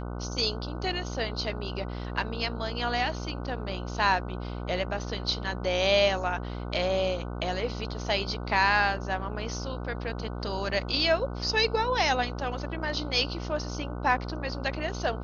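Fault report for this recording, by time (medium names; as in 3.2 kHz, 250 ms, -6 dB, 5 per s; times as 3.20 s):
buzz 60 Hz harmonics 25 -35 dBFS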